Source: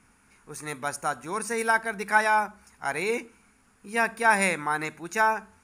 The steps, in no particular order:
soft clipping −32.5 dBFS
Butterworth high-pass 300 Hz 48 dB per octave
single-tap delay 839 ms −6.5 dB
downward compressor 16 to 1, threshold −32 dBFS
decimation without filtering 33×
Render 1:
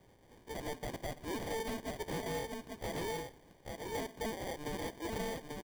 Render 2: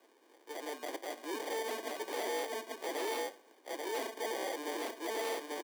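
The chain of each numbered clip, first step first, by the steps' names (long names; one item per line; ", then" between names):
Butterworth high-pass, then decimation without filtering, then downward compressor, then single-tap delay, then soft clipping
decimation without filtering, then single-tap delay, then soft clipping, then downward compressor, then Butterworth high-pass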